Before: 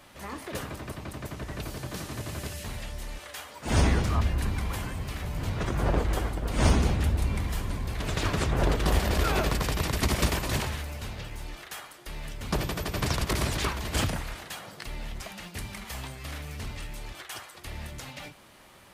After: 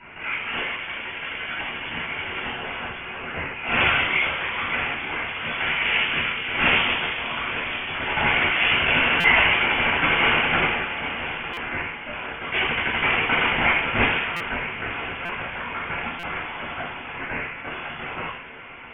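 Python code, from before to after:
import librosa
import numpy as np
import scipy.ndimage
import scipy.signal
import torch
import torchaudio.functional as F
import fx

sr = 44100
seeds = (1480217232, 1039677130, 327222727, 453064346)

y = fx.octave_divider(x, sr, octaves=1, level_db=-2.0)
y = scipy.signal.sosfilt(scipy.signal.butter(2, 910.0, 'highpass', fs=sr, output='sos'), y)
y = fx.whisperise(y, sr, seeds[0])
y = fx.echo_diffused(y, sr, ms=982, feedback_pct=41, wet_db=-13.0)
y = fx.room_shoebox(y, sr, seeds[1], volume_m3=920.0, walls='furnished', distance_m=6.5)
y = fx.freq_invert(y, sr, carrier_hz=3400)
y = fx.buffer_glitch(y, sr, at_s=(9.2, 11.53, 14.36, 15.25, 16.19), block=256, repeats=6)
y = fx.attack_slew(y, sr, db_per_s=180.0)
y = y * librosa.db_to_amplitude(7.0)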